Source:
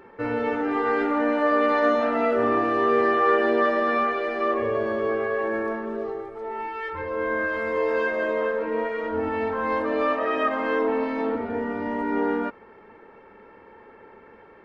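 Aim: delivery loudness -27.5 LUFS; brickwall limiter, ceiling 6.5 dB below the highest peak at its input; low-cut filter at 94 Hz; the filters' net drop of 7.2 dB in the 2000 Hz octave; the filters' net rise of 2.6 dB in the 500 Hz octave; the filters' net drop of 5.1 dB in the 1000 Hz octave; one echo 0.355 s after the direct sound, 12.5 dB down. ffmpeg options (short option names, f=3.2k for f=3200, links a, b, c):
-af "highpass=94,equalizer=f=500:t=o:g=4.5,equalizer=f=1k:t=o:g=-5,equalizer=f=2k:t=o:g=-7.5,alimiter=limit=-16dB:level=0:latency=1,aecho=1:1:355:0.237,volume=-2.5dB"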